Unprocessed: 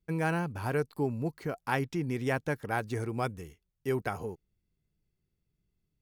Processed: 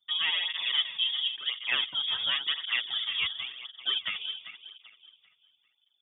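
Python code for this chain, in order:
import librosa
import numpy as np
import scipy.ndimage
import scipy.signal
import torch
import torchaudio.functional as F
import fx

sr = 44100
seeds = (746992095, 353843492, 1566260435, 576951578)

y = fx.reverse_delay_fb(x, sr, ms=196, feedback_pct=58, wet_db=-10.0)
y = fx.freq_invert(y, sr, carrier_hz=3500)
y = fx.flanger_cancel(y, sr, hz=0.94, depth_ms=3.7)
y = F.gain(torch.from_numpy(y), 4.0).numpy()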